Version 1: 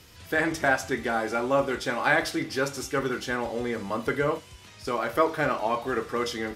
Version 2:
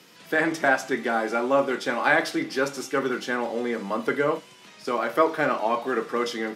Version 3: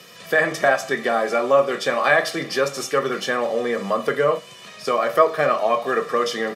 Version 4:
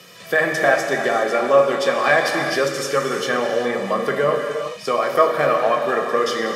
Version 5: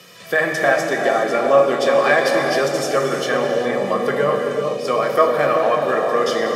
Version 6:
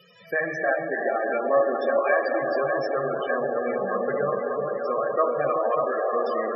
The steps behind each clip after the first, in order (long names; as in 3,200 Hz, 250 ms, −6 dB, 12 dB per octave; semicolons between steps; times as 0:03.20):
Butterworth high-pass 160 Hz 36 dB per octave; high-shelf EQ 5,200 Hz −5.5 dB; level +2.5 dB
comb filter 1.7 ms, depth 64%; in parallel at +1 dB: downward compressor, threshold −28 dBFS, peak gain reduction 16 dB
reverb whose tail is shaped and stops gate 430 ms flat, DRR 3 dB
bucket-brigade delay 384 ms, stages 2,048, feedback 62%, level −4 dB
delay with a band-pass on its return 591 ms, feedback 67%, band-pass 990 Hz, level −5 dB; spectral peaks only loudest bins 32; level −7.5 dB